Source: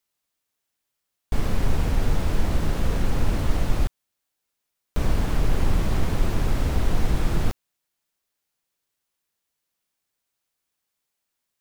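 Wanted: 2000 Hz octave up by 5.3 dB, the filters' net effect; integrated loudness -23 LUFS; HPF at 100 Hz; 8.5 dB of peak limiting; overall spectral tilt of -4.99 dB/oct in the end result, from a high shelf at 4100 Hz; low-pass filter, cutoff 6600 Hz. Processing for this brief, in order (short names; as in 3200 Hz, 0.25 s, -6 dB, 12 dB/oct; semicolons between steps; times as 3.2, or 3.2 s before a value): HPF 100 Hz; LPF 6600 Hz; bell 2000 Hz +5 dB; high shelf 4100 Hz +7.5 dB; gain +9.5 dB; limiter -13.5 dBFS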